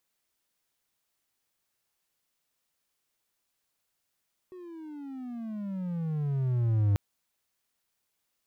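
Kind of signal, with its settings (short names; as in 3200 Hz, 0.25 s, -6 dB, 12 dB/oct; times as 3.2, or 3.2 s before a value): gliding synth tone triangle, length 2.44 s, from 372 Hz, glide -23 st, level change +22 dB, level -18.5 dB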